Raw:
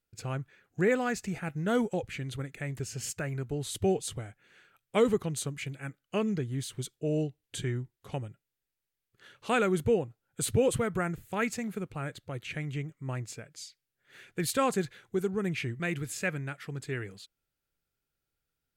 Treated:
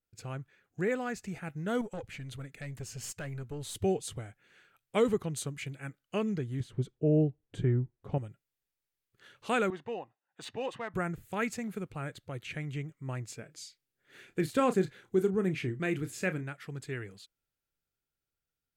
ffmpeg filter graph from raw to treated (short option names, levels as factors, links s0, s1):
-filter_complex "[0:a]asettb=1/sr,asplit=3[s0][s1][s2];[s0]atrim=end=1.814[s3];[s1]atrim=start=1.81:end=3.79,asetpts=PTS-STARTPTS,afade=t=in:d=0.004:c=qsin,afade=t=out:st=1.976:d=0.004:c=qsin,bandreject=f=360:w=7.4,aeval=exprs='(tanh(28.2*val(0)+0.35)-tanh(0.35))/28.2':c=same[s4];[s2]atrim=start=3.786[s5];[s3][s4]acrossfade=d=0.004:c1=hsin:c2=qsin[s6];[s6][s5]acrossfade=d=0.004:c1=qsin:c2=hsin,asettb=1/sr,asplit=3[s7][s8][s9];[s7]atrim=end=6.604[s10];[s8]atrim=start=6.6:end=8.18,asetpts=PTS-STARTPTS,afade=t=in:d=0.004:c=qsin,afade=t=out:st=1.576:d=0.004:c=qsin,lowpass=f=2700:p=1,tiltshelf=f=1200:g=7.5[s11];[s9]atrim=start=8.176[s12];[s10][s11]acrossfade=d=0.004:c1=hsin:c2=qsin[s13];[s13][s12]acrossfade=d=0.004:c1=qsin:c2=hsin,asettb=1/sr,asplit=3[s14][s15][s16];[s14]atrim=end=9.704[s17];[s15]atrim=start=9.7:end=10.94,asetpts=PTS-STARTPTS,afade=t=in:d=0.004:c=qsin,afade=t=out:st=1.236:d=0.004:c=qsin,highpass=490,lowpass=5700,aecho=1:1:1.1:0.56,atrim=end_sample=54684,adynamicsmooth=sensitivity=5:basefreq=3400[s18];[s16]atrim=start=10.936[s19];[s17][s18]acrossfade=d=0.004:c1=hsin:c2=qsin[s20];[s20][s19]acrossfade=d=0.004:c1=qsin:c2=hsin,asettb=1/sr,asplit=3[s21][s22][s23];[s21]atrim=end=13.394[s24];[s22]atrim=start=13.39:end=16.43,asetpts=PTS-STARTPTS,afade=t=in:d=0.004:c=qsin,afade=t=out:st=3.036:d=0.004:c=qsin,deesser=0.8,equalizer=f=310:t=o:w=1.3:g=6,asplit=2[s25][s26];[s26]adelay=32,volume=0.266[s27];[s25][s27]amix=inputs=2:normalize=0,atrim=end_sample=134064[s28];[s23]atrim=start=16.426[s29];[s24][s28]acrossfade=d=0.004:c1=hsin:c2=qsin[s30];[s30][s29]acrossfade=d=0.004:c1=qsin:c2=hsin,dynaudnorm=f=490:g=9:m=1.41,adynamicequalizer=threshold=0.01:dfrequency=2100:dqfactor=0.7:tfrequency=2100:tqfactor=0.7:attack=5:release=100:ratio=0.375:range=2.5:mode=cutabove:tftype=highshelf,volume=0.562"